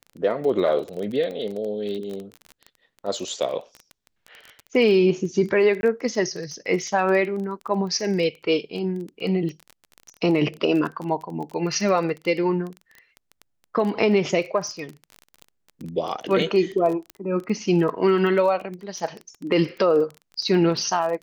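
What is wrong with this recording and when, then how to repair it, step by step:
surface crackle 20 per second −29 dBFS
0:05.81–0:05.83: drop-out 21 ms
0:17.10: click −19 dBFS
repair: click removal
repair the gap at 0:05.81, 21 ms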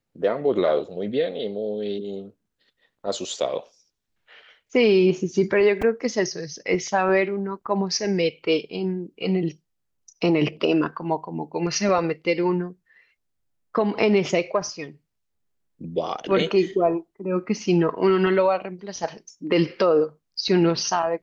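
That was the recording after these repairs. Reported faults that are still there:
none of them is left

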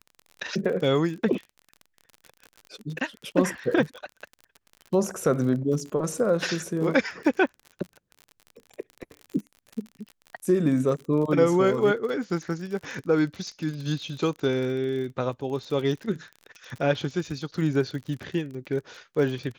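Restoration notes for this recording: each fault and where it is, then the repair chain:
surface crackle 41 per second −34 dBFS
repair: click removal

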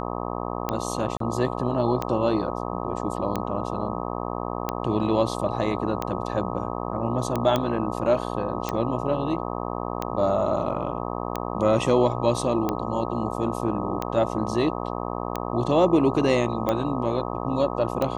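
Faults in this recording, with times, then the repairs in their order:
mains buzz 60 Hz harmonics 21 −30 dBFS
scratch tick 45 rpm −12 dBFS
0:01.17–0:01.20: drop-out 33 ms
0:07.56: click −10 dBFS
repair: click removal
hum removal 60 Hz, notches 21
repair the gap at 0:01.17, 33 ms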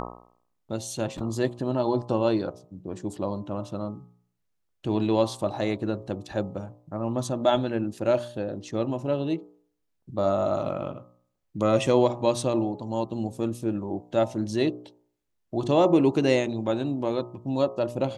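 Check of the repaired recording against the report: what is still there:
none of them is left

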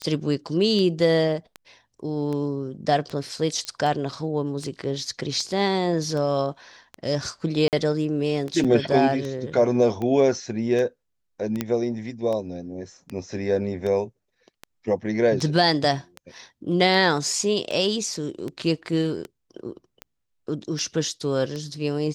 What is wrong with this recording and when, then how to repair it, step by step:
scratch tick 78 rpm −19 dBFS
0:03.65: click −16 dBFS
0:07.68–0:07.73: drop-out 48 ms
0:08.64–0:08.65: drop-out 6.4 ms
0:11.61: click −10 dBFS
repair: click removal
repair the gap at 0:07.68, 48 ms
repair the gap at 0:08.64, 6.4 ms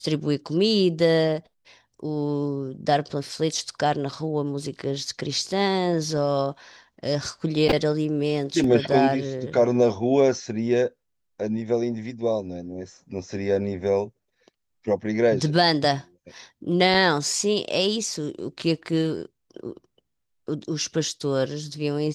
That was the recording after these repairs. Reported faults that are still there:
none of them is left

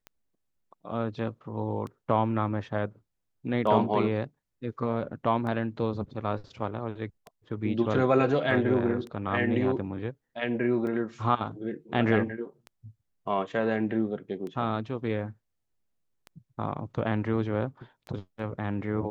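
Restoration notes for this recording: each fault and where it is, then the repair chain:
scratch tick 33 1/3 rpm −27 dBFS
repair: click removal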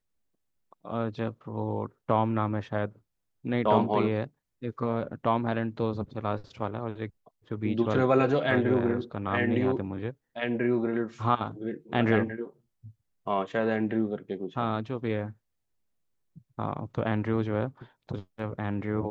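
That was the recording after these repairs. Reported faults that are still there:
none of them is left

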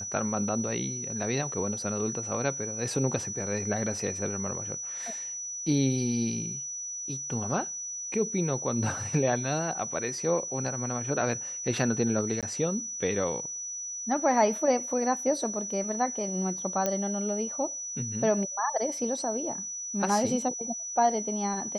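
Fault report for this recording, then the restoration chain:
whistle 5,900 Hz −34 dBFS
0:12.41–0:12.43: drop-out 17 ms
0:16.86: click −13 dBFS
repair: click removal
notch filter 5,900 Hz, Q 30
repair the gap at 0:12.41, 17 ms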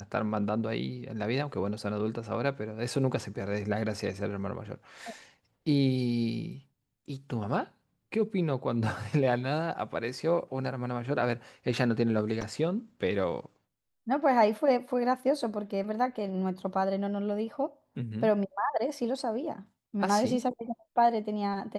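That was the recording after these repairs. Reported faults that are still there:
none of them is left

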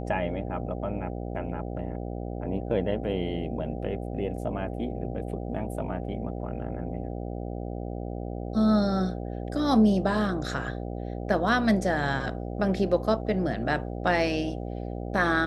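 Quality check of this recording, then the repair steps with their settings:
mains buzz 60 Hz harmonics 13 −34 dBFS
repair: hum removal 60 Hz, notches 13

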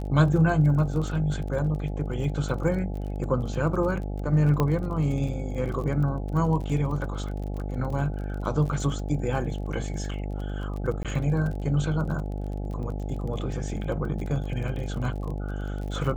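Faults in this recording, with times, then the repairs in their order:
mains buzz 50 Hz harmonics 17 −31 dBFS
surface crackle 31 per second −34 dBFS
0:04.60: click −12 dBFS
0:11.03–0:11.05: drop-out 17 ms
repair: click removal
hum removal 50 Hz, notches 17
repair the gap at 0:11.03, 17 ms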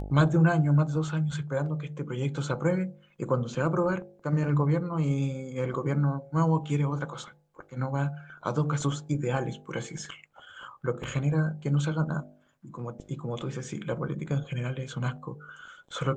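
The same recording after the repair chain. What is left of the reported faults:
none of them is left

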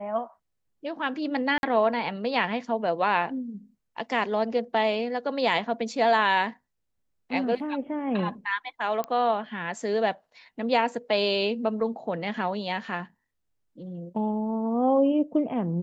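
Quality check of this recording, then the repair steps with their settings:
0:01.58–0:01.63: drop-out 51 ms
0:09.04: click −17 dBFS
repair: click removal
repair the gap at 0:01.58, 51 ms

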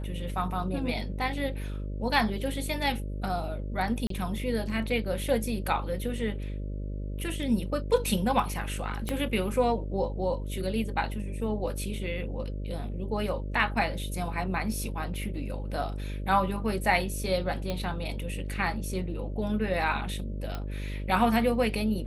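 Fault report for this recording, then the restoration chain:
mains buzz 50 Hz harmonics 12 −34 dBFS
0:04.07–0:04.10: drop-out 33 ms
0:09.09: click −16 dBFS
0:17.70: click −18 dBFS
0:20.55: click −21 dBFS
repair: click removal
hum removal 50 Hz, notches 12
repair the gap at 0:04.07, 33 ms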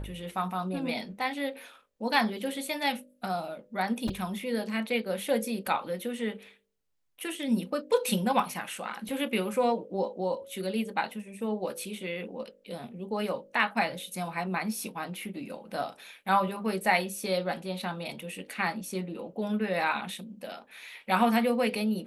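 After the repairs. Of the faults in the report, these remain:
0:09.09: click

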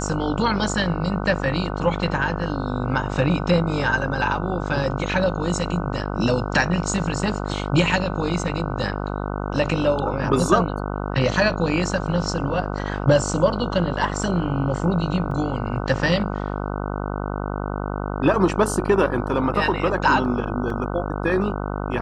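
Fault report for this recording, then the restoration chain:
mains buzz 50 Hz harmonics 30 −27 dBFS
0:15.31: drop-out 3.3 ms
0:20.70: drop-out 2.9 ms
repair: hum removal 50 Hz, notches 30
repair the gap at 0:15.31, 3.3 ms
repair the gap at 0:20.70, 2.9 ms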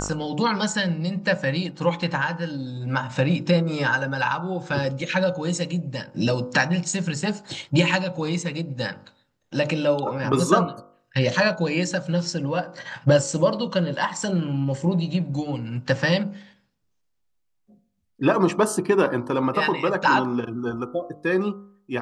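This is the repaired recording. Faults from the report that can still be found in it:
none of them is left

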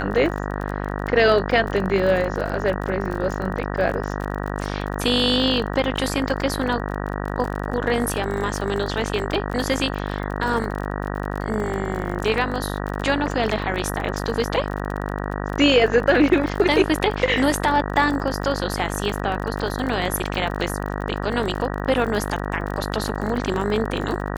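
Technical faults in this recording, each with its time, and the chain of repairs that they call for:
mains buzz 50 Hz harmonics 38 −27 dBFS
surface crackle 34 per second −27 dBFS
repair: click removal
hum removal 50 Hz, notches 38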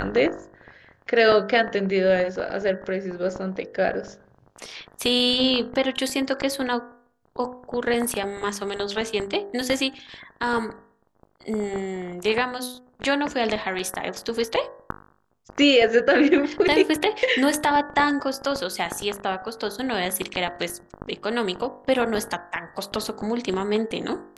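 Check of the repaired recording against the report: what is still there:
none of them is left

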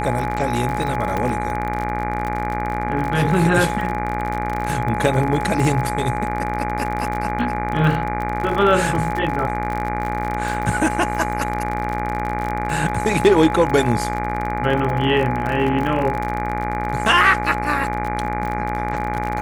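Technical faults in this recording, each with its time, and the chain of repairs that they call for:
mains buzz 60 Hz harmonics 40 −26 dBFS
surface crackle 45 per second −24 dBFS
whistle 840 Hz −25 dBFS
0:01.17: click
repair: click removal
hum removal 60 Hz, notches 40
notch filter 840 Hz, Q 30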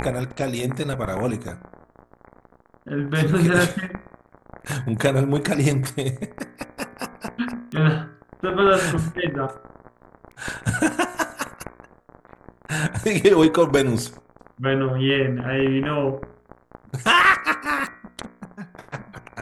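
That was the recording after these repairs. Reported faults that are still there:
0:01.17: click

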